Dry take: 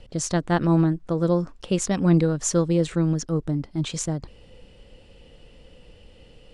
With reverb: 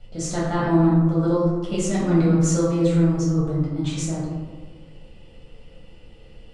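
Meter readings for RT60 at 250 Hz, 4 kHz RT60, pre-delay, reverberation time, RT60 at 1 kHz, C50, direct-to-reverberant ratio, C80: 1.8 s, 0.65 s, 5 ms, 1.3 s, 1.4 s, −0.5 dB, −9.0 dB, 2.5 dB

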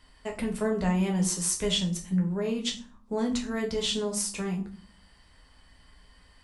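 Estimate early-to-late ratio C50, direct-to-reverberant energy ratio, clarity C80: 10.5 dB, 0.5 dB, 15.5 dB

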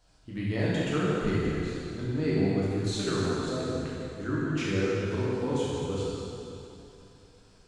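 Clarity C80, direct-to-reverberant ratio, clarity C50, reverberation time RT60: −2.0 dB, −8.0 dB, −4.0 dB, 2.9 s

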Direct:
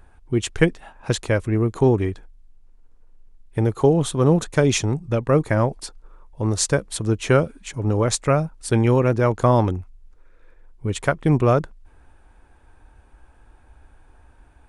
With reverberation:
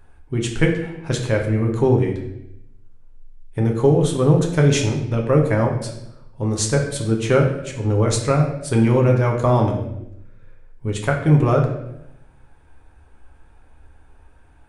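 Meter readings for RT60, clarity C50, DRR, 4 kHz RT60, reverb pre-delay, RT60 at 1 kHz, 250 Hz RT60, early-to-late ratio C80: 0.85 s, 6.0 dB, 0.0 dB, 0.75 s, 7 ms, 0.75 s, 1.1 s, 8.5 dB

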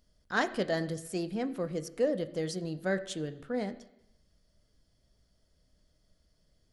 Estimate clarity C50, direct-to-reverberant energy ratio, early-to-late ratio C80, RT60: 15.0 dB, 9.0 dB, 16.5 dB, 0.85 s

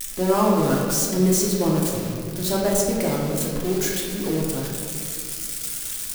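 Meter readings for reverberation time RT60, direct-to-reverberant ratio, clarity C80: 2.2 s, −4.5 dB, 2.0 dB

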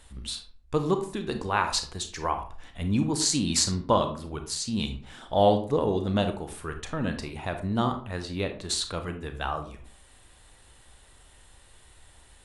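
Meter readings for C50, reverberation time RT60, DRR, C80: 9.5 dB, 0.45 s, 6.5 dB, 14.5 dB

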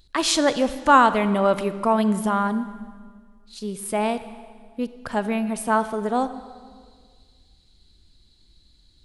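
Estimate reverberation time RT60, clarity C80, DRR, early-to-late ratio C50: 1.8 s, 13.5 dB, 12.0 dB, 12.5 dB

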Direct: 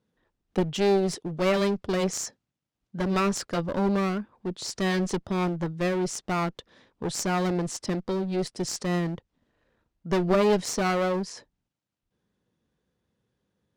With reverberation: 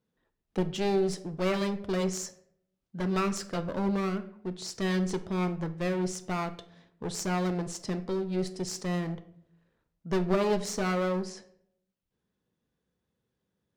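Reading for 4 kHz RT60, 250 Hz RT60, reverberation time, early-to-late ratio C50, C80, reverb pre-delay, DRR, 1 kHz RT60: 0.40 s, 0.80 s, 0.70 s, 15.0 dB, 18.0 dB, 5 ms, 9.0 dB, 0.65 s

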